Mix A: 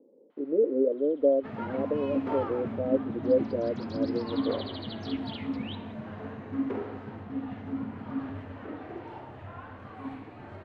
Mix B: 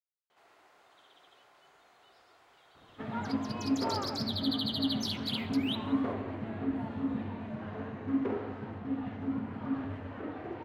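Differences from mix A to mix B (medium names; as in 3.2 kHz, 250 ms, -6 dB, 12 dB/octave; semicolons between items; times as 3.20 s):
speech: muted; first sound: remove distance through air 330 m; second sound: entry +1.55 s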